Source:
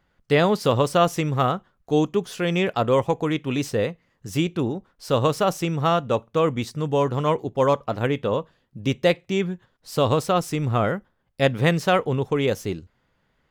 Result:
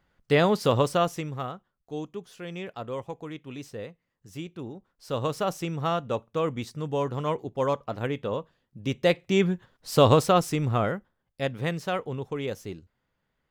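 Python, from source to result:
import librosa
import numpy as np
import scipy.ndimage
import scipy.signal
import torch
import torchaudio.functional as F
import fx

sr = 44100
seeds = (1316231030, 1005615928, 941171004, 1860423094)

y = fx.gain(x, sr, db=fx.line((0.82, -2.5), (1.56, -14.5), (4.51, -14.5), (5.41, -6.5), (8.83, -6.5), (9.47, 2.5), (10.1, 2.5), (11.48, -9.5)))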